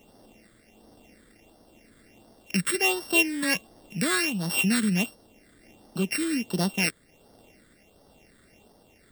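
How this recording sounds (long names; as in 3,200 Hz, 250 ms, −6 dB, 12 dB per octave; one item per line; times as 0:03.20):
a buzz of ramps at a fixed pitch in blocks of 16 samples
tremolo triangle 1.1 Hz, depth 35%
a quantiser's noise floor 12 bits, dither triangular
phaser sweep stages 8, 1.4 Hz, lowest notch 790–2,400 Hz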